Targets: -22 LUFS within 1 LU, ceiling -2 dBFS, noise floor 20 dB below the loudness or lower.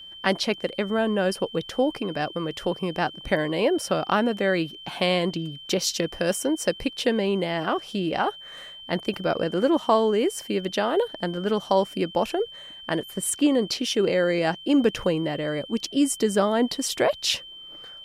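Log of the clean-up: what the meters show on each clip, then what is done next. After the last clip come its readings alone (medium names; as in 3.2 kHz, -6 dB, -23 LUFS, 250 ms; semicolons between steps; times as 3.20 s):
steady tone 3.1 kHz; tone level -40 dBFS; loudness -25.0 LUFS; peak level -7.5 dBFS; loudness target -22.0 LUFS
-> band-stop 3.1 kHz, Q 30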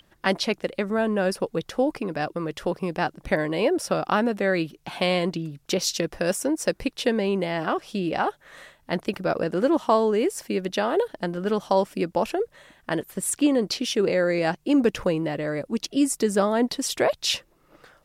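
steady tone not found; loudness -25.0 LUFS; peak level -7.5 dBFS; loudness target -22.0 LUFS
-> trim +3 dB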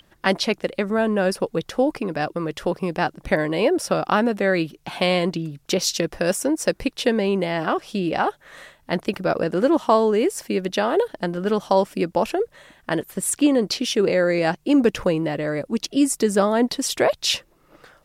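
loudness -22.0 LUFS; peak level -4.5 dBFS; noise floor -59 dBFS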